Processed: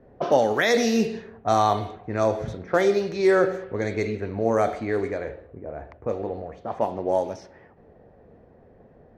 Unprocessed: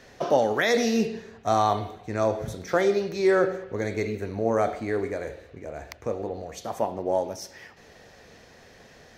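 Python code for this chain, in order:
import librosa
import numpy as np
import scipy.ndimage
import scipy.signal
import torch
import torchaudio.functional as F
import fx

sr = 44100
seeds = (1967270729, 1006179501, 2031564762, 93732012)

y = fx.env_lowpass(x, sr, base_hz=540.0, full_db=-21.5)
y = y * 10.0 ** (2.0 / 20.0)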